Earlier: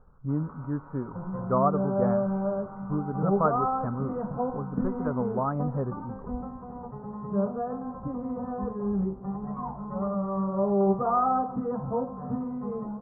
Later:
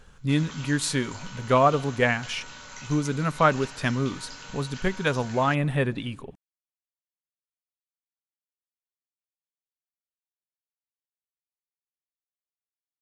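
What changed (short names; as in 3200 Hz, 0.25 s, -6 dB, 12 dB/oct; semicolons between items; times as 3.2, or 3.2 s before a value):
speech +4.5 dB; second sound: muted; master: remove Chebyshev low-pass 1300 Hz, order 5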